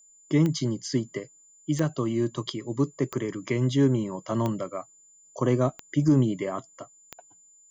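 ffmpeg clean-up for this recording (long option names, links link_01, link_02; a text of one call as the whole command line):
ffmpeg -i in.wav -af "adeclick=threshold=4,bandreject=frequency=7100:width=30" out.wav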